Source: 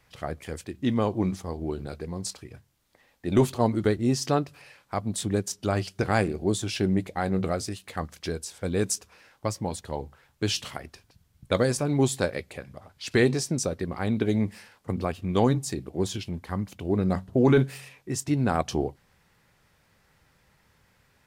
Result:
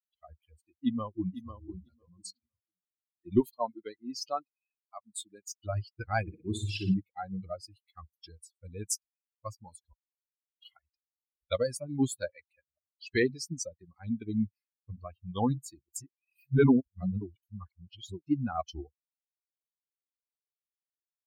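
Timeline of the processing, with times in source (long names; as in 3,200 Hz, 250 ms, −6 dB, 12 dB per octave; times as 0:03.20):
0:00.74–0:01.37: delay throw 500 ms, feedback 40%, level −4.5 dB
0:03.40–0:05.46: high-pass filter 340 Hz 6 dB per octave
0:06.21–0:06.94: flutter between parallel walls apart 10.2 metres, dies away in 1.2 s
0:09.93–0:10.62: silence
0:15.92–0:18.24: reverse
whole clip: spectral dynamics exaggerated over time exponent 3; noise reduction from a noise print of the clip's start 7 dB; parametric band 260 Hz +4.5 dB 0.41 octaves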